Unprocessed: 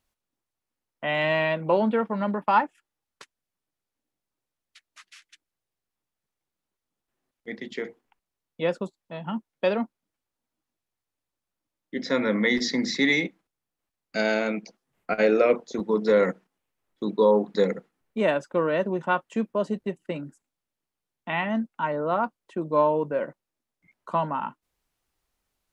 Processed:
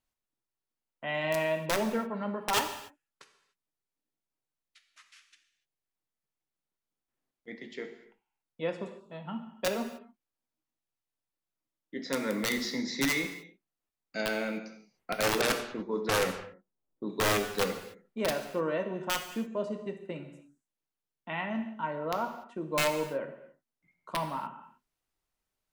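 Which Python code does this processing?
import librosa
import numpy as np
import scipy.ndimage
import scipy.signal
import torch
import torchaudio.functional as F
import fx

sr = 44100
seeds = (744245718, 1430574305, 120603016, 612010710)

y = (np.mod(10.0 ** (13.0 / 20.0) * x + 1.0, 2.0) - 1.0) / 10.0 ** (13.0 / 20.0)
y = fx.rev_gated(y, sr, seeds[0], gate_ms=320, shape='falling', drr_db=5.5)
y = fx.env_lowpass(y, sr, base_hz=650.0, full_db=-17.0, at=(15.41, 17.1))
y = y * 10.0 ** (-8.0 / 20.0)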